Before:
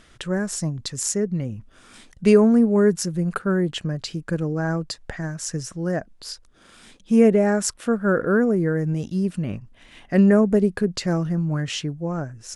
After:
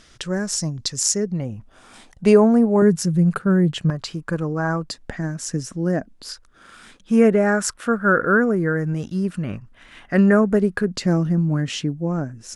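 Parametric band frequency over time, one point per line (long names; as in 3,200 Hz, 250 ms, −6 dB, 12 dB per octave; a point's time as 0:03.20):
parametric band +9 dB 0.89 octaves
5,400 Hz
from 0:01.32 790 Hz
from 0:02.82 150 Hz
from 0:03.90 1,100 Hz
from 0:04.87 250 Hz
from 0:06.29 1,400 Hz
from 0:10.91 240 Hz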